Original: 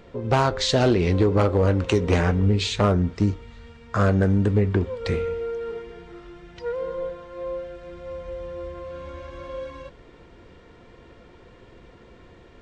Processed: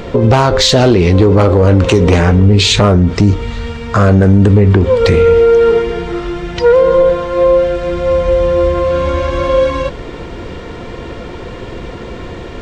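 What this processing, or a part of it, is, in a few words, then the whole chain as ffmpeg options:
mastering chain: -af "equalizer=frequency=1700:width_type=o:width=0.77:gain=-2,acompressor=threshold=-24dB:ratio=2.5,asoftclip=type=tanh:threshold=-14dB,alimiter=level_in=24dB:limit=-1dB:release=50:level=0:latency=1,volume=-1dB"

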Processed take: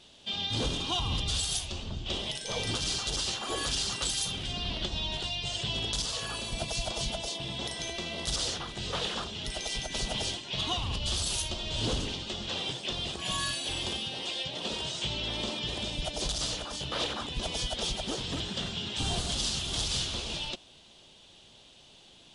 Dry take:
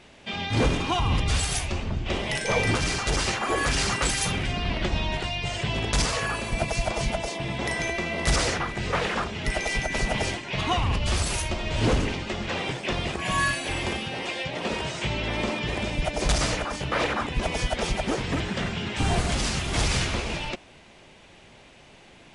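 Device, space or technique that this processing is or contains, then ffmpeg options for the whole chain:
over-bright horn tweeter: -af "highshelf=frequency=2700:width_type=q:width=3:gain=7,alimiter=limit=-11.5dB:level=0:latency=1:release=331,volume=-8.5dB"

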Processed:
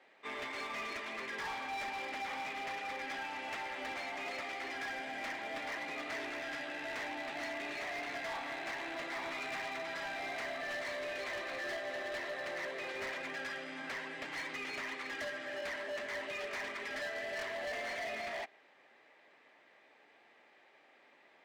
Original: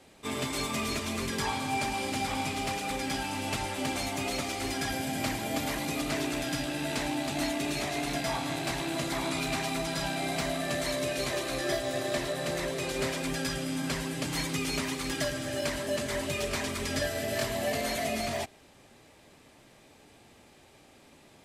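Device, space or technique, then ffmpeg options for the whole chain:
megaphone: -af "highpass=500,lowpass=2800,equalizer=frequency=1900:width_type=o:width=0.48:gain=8,asoftclip=type=hard:threshold=-31.5dB,volume=-5dB"

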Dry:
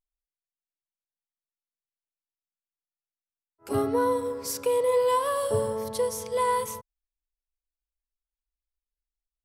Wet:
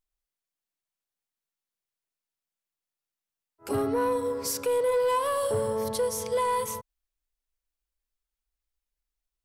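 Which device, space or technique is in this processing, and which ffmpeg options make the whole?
soft clipper into limiter: -af "asoftclip=type=tanh:threshold=-18.5dB,alimiter=limit=-24dB:level=0:latency=1:release=324,volume=4dB"

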